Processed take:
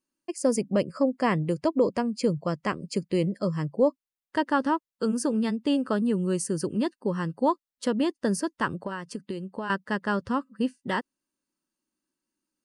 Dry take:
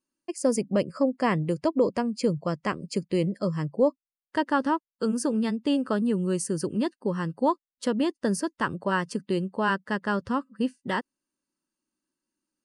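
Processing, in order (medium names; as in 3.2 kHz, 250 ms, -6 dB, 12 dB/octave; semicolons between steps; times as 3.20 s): 8.76–9.70 s: compression 10:1, threshold -30 dBFS, peak gain reduction 10.5 dB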